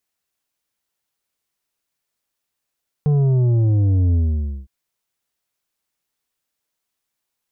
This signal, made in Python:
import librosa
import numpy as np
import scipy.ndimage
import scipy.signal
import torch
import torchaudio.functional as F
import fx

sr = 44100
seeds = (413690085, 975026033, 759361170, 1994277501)

y = fx.sub_drop(sr, level_db=-14.0, start_hz=150.0, length_s=1.61, drive_db=7.5, fade_s=0.53, end_hz=65.0)